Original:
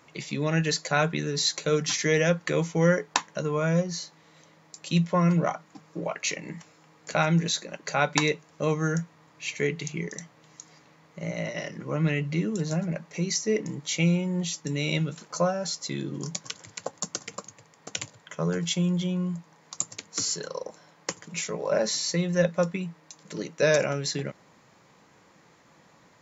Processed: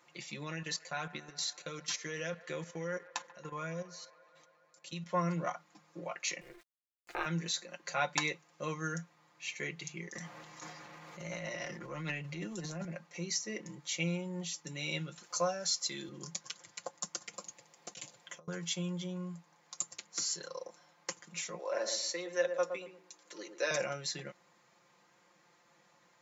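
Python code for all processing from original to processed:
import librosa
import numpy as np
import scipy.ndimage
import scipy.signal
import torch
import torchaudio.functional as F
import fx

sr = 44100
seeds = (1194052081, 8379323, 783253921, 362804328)

y = fx.chain(x, sr, fx.level_steps(step_db=14),
    fx.echo_wet_bandpass(ms=139, feedback_pct=77, hz=1100.0, wet_db=-17), at=(0.43, 5.06))
y = fx.chain(y, sr, fx.bass_treble(bass_db=-2, treble_db=-14),
    fx.sample_gate(floor_db=-46.0),
    fx.ring_mod(carrier_hz=180.0), at=(6.41, 7.26))
y = fx.chain(y, sr, fx.transient(attack_db=-11, sustain_db=9),
    fx.band_squash(depth_pct=70), at=(10.15, 12.85))
y = fx.chain(y, sr, fx.highpass(hz=150.0, slope=12),
    fx.high_shelf(hz=2600.0, db=8.0), at=(15.23, 16.09))
y = fx.chain(y, sr, fx.highpass(hz=150.0, slope=12),
    fx.peak_eq(hz=1400.0, db=-6.0, octaves=1.1),
    fx.over_compress(threshold_db=-37.0, ratio=-0.5), at=(17.33, 18.48))
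y = fx.chain(y, sr, fx.highpass(hz=300.0, slope=24),
    fx.echo_filtered(ms=116, feedback_pct=33, hz=860.0, wet_db=-6), at=(21.59, 23.71))
y = fx.low_shelf(y, sr, hz=310.0, db=-11.5)
y = y + 0.65 * np.pad(y, (int(5.7 * sr / 1000.0), 0))[:len(y)]
y = y * 10.0 ** (-8.5 / 20.0)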